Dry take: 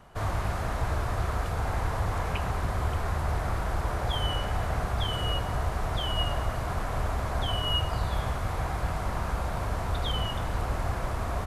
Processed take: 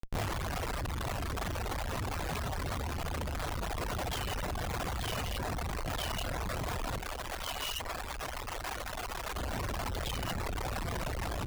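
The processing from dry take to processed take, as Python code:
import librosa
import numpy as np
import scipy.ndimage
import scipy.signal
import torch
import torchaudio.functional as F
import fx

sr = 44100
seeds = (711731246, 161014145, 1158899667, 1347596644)

y = fx.high_shelf(x, sr, hz=3800.0, db=-10.0)
y = fx.schmitt(y, sr, flips_db=-45.0)
y = fx.dereverb_blind(y, sr, rt60_s=1.2)
y = fx.peak_eq(y, sr, hz=130.0, db=-12.0, octaves=2.8, at=(6.98, 9.36))
y = y * 10.0 ** (-3.0 / 20.0)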